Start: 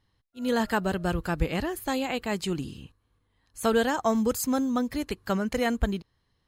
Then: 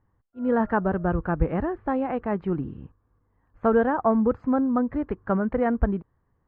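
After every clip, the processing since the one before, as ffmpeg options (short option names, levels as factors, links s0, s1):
-af "lowpass=f=1500:w=0.5412,lowpass=f=1500:w=1.3066,volume=1.5"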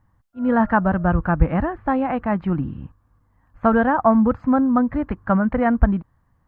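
-af "equalizer=f=410:t=o:w=0.54:g=-13,volume=2.37"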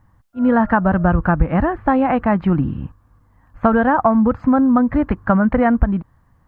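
-af "acompressor=threshold=0.126:ratio=6,volume=2.24"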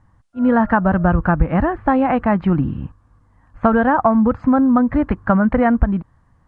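-af "aresample=22050,aresample=44100"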